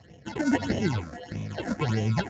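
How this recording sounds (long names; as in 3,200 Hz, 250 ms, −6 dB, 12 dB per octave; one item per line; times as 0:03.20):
aliases and images of a low sample rate 1,200 Hz, jitter 0%
tremolo triangle 2.3 Hz, depth 50%
phaser sweep stages 8, 1.6 Hz, lowest notch 110–1,400 Hz
Speex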